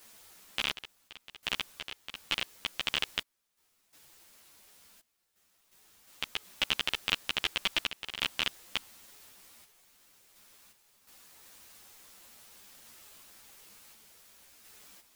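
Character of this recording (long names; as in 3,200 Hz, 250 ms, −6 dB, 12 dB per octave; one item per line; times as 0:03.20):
a quantiser's noise floor 10 bits, dither triangular
sample-and-hold tremolo 2.8 Hz, depth 95%
a shimmering, thickened sound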